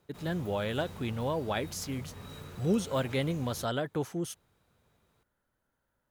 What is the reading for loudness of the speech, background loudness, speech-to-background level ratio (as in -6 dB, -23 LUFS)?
-33.0 LUFS, -47.0 LUFS, 14.0 dB